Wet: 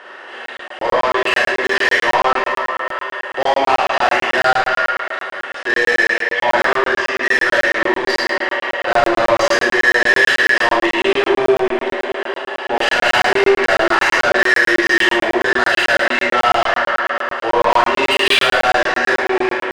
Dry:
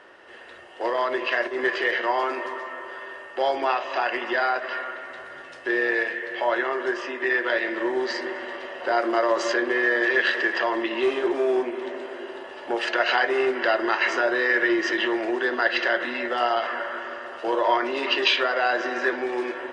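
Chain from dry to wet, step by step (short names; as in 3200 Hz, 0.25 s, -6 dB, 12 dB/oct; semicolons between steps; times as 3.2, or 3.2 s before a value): overdrive pedal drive 21 dB, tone 4700 Hz, clips at -6.5 dBFS; Schroeder reverb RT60 0.83 s, combs from 29 ms, DRR -3 dB; crackling interface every 0.11 s, samples 1024, zero, from 0.46; gain -3 dB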